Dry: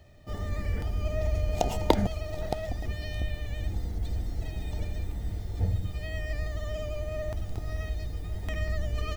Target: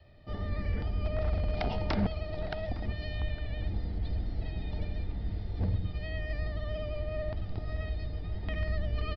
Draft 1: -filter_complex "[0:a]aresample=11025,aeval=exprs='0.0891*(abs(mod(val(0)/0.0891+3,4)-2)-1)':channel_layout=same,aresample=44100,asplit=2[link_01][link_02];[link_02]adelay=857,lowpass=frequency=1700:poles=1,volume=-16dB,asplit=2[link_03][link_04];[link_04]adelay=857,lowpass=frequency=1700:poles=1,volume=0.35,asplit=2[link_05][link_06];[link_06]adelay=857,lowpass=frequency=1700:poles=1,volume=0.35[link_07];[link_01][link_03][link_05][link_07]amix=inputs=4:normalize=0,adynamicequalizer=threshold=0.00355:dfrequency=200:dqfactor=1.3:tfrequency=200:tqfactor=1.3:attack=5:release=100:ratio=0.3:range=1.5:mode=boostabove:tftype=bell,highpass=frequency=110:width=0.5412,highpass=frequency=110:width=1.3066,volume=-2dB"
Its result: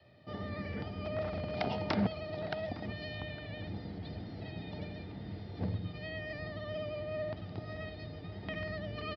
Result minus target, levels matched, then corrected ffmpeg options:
125 Hz band −2.5 dB
-filter_complex "[0:a]aresample=11025,aeval=exprs='0.0891*(abs(mod(val(0)/0.0891+3,4)-2)-1)':channel_layout=same,aresample=44100,asplit=2[link_01][link_02];[link_02]adelay=857,lowpass=frequency=1700:poles=1,volume=-16dB,asplit=2[link_03][link_04];[link_04]adelay=857,lowpass=frequency=1700:poles=1,volume=0.35,asplit=2[link_05][link_06];[link_06]adelay=857,lowpass=frequency=1700:poles=1,volume=0.35[link_07];[link_01][link_03][link_05][link_07]amix=inputs=4:normalize=0,adynamicequalizer=threshold=0.00355:dfrequency=200:dqfactor=1.3:tfrequency=200:tqfactor=1.3:attack=5:release=100:ratio=0.3:range=1.5:mode=boostabove:tftype=bell,volume=-2dB"

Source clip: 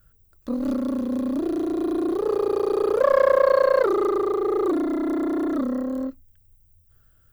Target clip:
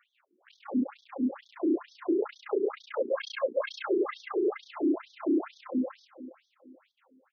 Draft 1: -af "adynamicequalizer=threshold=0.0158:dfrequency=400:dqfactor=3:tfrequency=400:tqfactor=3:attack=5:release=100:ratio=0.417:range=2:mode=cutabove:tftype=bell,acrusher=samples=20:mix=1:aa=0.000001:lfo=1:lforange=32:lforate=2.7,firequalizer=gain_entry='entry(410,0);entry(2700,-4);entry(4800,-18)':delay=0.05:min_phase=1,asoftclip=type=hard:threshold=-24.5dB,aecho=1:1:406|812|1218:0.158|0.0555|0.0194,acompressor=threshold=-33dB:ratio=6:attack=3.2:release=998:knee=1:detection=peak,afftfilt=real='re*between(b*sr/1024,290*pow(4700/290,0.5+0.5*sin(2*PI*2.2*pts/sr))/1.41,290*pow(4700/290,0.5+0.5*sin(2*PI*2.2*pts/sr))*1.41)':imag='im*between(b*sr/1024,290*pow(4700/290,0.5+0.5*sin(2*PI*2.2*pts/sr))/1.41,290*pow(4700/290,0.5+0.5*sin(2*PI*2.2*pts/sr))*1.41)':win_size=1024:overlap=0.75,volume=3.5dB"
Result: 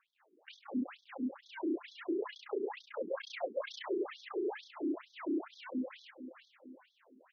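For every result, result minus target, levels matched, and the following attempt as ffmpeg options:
sample-and-hold swept by an LFO: distortion +13 dB; downward compressor: peak gain reduction +8.5 dB
-af "adynamicequalizer=threshold=0.0158:dfrequency=400:dqfactor=3:tfrequency=400:tqfactor=3:attack=5:release=100:ratio=0.417:range=2:mode=cutabove:tftype=bell,acrusher=samples=5:mix=1:aa=0.000001:lfo=1:lforange=8:lforate=2.7,firequalizer=gain_entry='entry(410,0);entry(2700,-4);entry(4800,-18)':delay=0.05:min_phase=1,asoftclip=type=hard:threshold=-24.5dB,aecho=1:1:406|812|1218:0.158|0.0555|0.0194,acompressor=threshold=-33dB:ratio=6:attack=3.2:release=998:knee=1:detection=peak,afftfilt=real='re*between(b*sr/1024,290*pow(4700/290,0.5+0.5*sin(2*PI*2.2*pts/sr))/1.41,290*pow(4700/290,0.5+0.5*sin(2*PI*2.2*pts/sr))*1.41)':imag='im*between(b*sr/1024,290*pow(4700/290,0.5+0.5*sin(2*PI*2.2*pts/sr))/1.41,290*pow(4700/290,0.5+0.5*sin(2*PI*2.2*pts/sr))*1.41)':win_size=1024:overlap=0.75,volume=3.5dB"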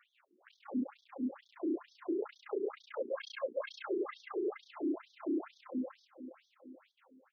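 downward compressor: peak gain reduction +8.5 dB
-af "adynamicequalizer=threshold=0.0158:dfrequency=400:dqfactor=3:tfrequency=400:tqfactor=3:attack=5:release=100:ratio=0.417:range=2:mode=cutabove:tftype=bell,acrusher=samples=5:mix=1:aa=0.000001:lfo=1:lforange=8:lforate=2.7,firequalizer=gain_entry='entry(410,0);entry(2700,-4);entry(4800,-18)':delay=0.05:min_phase=1,asoftclip=type=hard:threshold=-24.5dB,aecho=1:1:406|812|1218:0.158|0.0555|0.0194,afftfilt=real='re*between(b*sr/1024,290*pow(4700/290,0.5+0.5*sin(2*PI*2.2*pts/sr))/1.41,290*pow(4700/290,0.5+0.5*sin(2*PI*2.2*pts/sr))*1.41)':imag='im*between(b*sr/1024,290*pow(4700/290,0.5+0.5*sin(2*PI*2.2*pts/sr))/1.41,290*pow(4700/290,0.5+0.5*sin(2*PI*2.2*pts/sr))*1.41)':win_size=1024:overlap=0.75,volume=3.5dB"

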